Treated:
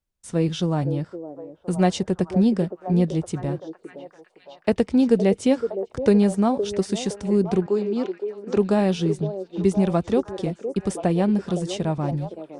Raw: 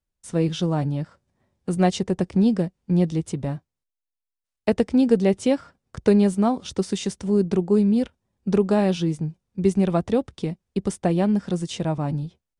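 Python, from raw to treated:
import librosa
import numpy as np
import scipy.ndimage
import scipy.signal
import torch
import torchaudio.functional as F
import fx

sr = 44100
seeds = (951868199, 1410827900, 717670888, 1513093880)

y = fx.ellip_bandpass(x, sr, low_hz=270.0, high_hz=6800.0, order=3, stop_db=40, at=(7.66, 8.57))
y = fx.echo_stepped(y, sr, ms=514, hz=440.0, octaves=0.7, feedback_pct=70, wet_db=-6.0)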